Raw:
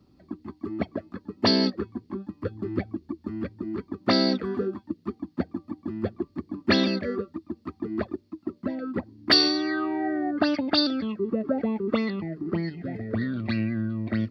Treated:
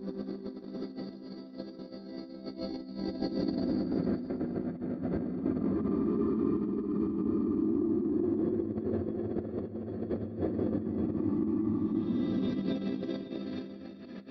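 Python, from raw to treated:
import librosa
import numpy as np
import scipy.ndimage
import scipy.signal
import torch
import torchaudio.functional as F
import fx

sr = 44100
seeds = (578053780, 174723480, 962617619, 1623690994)

y = fx.block_reorder(x, sr, ms=139.0, group=5)
y = fx.paulstretch(y, sr, seeds[0], factor=7.8, window_s=0.5, from_s=4.53)
y = fx.tilt_shelf(y, sr, db=8.5, hz=690.0)
y = fx.over_compress(y, sr, threshold_db=-28.0, ratio=-0.5)
y = fx.low_shelf(y, sr, hz=170.0, db=-6.0)
y = y + 10.0 ** (-13.0 / 20.0) * np.pad(y, (int(554 * sr / 1000.0), 0))[:len(y)]
y = y * librosa.db_to_amplitude(-3.0)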